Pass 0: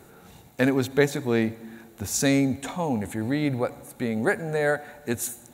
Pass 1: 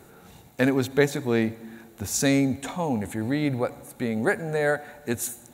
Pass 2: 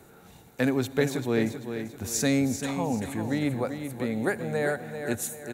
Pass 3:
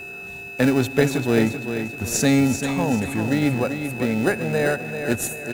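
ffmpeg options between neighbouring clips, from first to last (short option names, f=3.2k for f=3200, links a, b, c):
-af anull
-filter_complex "[0:a]acrossover=split=370|3000[a][b][c];[b]acompressor=threshold=-23dB:ratio=6[d];[a][d][c]amix=inputs=3:normalize=0,aecho=1:1:390|780|1170|1560:0.376|0.143|0.0543|0.0206,volume=-2.5dB"
-filter_complex "[0:a]aeval=exprs='val(0)+0.0112*sin(2*PI*2600*n/s)':c=same,asplit=2[a][b];[b]acrusher=samples=40:mix=1:aa=0.000001,volume=-9dB[c];[a][c]amix=inputs=2:normalize=0,volume=5dB"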